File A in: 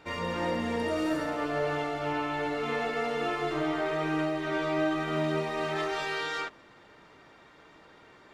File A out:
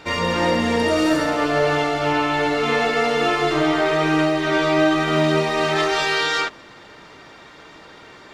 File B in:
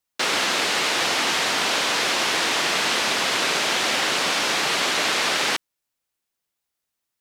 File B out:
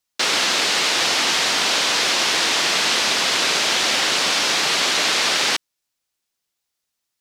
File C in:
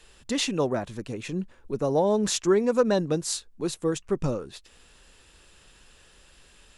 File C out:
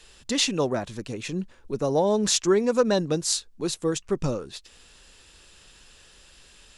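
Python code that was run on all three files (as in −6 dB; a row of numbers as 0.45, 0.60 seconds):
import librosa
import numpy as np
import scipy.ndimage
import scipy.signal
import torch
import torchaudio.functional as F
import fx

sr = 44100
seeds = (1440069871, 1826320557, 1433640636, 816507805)

y = fx.peak_eq(x, sr, hz=5100.0, db=5.5, octaves=1.7)
y = librosa.util.normalize(y) * 10.0 ** (-6 / 20.0)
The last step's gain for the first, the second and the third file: +10.5, +0.5, +0.5 decibels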